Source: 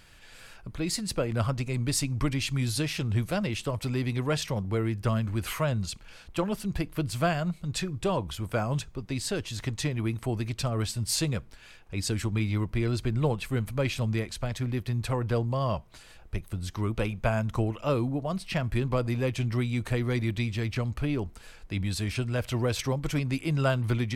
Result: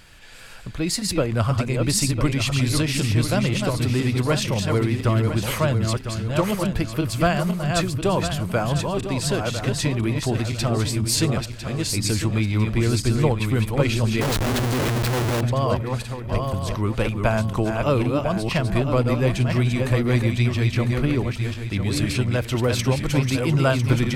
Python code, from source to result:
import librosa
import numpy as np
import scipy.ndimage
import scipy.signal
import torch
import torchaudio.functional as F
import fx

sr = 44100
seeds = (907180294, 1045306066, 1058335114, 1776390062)

y = fx.reverse_delay_fb(x, sr, ms=501, feedback_pct=54, wet_db=-4.5)
y = fx.schmitt(y, sr, flips_db=-41.0, at=(14.21, 15.41))
y = y * 10.0 ** (6.0 / 20.0)